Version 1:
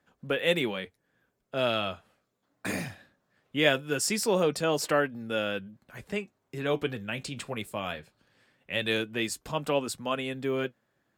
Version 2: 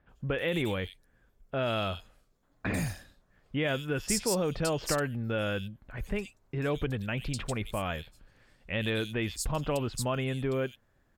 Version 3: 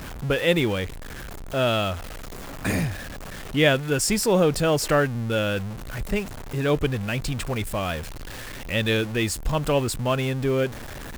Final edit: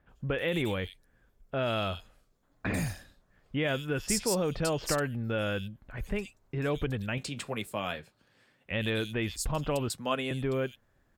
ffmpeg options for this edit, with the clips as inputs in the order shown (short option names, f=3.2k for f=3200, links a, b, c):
-filter_complex "[0:a]asplit=2[a][b];[1:a]asplit=3[c][d][e];[c]atrim=end=7.182[f];[a]atrim=start=7.178:end=8.712[g];[d]atrim=start=8.708:end=9.902[h];[b]atrim=start=9.898:end=10.312[i];[e]atrim=start=10.308[j];[f][g]acrossfade=d=0.004:c1=hsin:c2=hsin[k];[k][h]acrossfade=d=0.004:c1=hsin:c2=hsin[l];[l][i]acrossfade=d=0.004:c1=hsin:c2=hsin[m];[m][j]acrossfade=d=0.004:c1=hsin:c2=hsin"